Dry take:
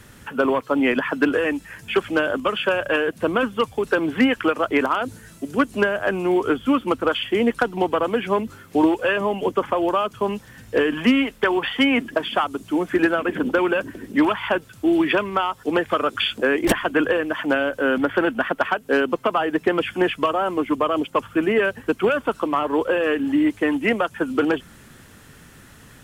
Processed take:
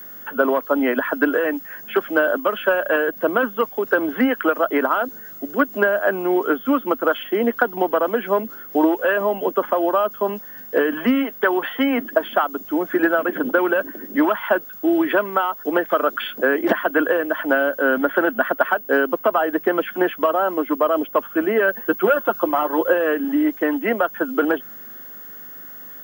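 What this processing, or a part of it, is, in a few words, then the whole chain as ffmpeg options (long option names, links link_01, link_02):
old television with a line whistle: -filter_complex "[0:a]acrossover=split=3500[link_01][link_02];[link_02]acompressor=threshold=-50dB:ratio=4:attack=1:release=60[link_03];[link_01][link_03]amix=inputs=2:normalize=0,highpass=frequency=210:width=0.5412,highpass=frequency=210:width=1.3066,equalizer=frequency=630:width_type=q:width=4:gain=6,equalizer=frequency=1500:width_type=q:width=4:gain=5,equalizer=frequency=2500:width_type=q:width=4:gain=-9,equalizer=frequency=4000:width_type=q:width=4:gain=-5,lowpass=frequency=7400:width=0.5412,lowpass=frequency=7400:width=1.3066,aeval=exprs='val(0)+0.0178*sin(2*PI*15625*n/s)':channel_layout=same,asettb=1/sr,asplit=3[link_04][link_05][link_06];[link_04]atrim=end=21.684[link_07];[link_05]atrim=start=21.68:end=22.93,asetpts=PTS-STARTPTS,afade=type=in:duration=0.004:curve=qsin,afade=type=out:start_time=1.246:duration=0.004:curve=qsin,aecho=1:1:5.7:0.6,atrim=end_sample=55125[link_08];[link_06]atrim=start=22.926[link_09];[link_07][link_08]acrossfade=duration=0.004:curve1=hsin:curve2=qsin[link_10];[link_10][link_09]acrossfade=duration=0.004:curve1=qsin:curve2=hsin"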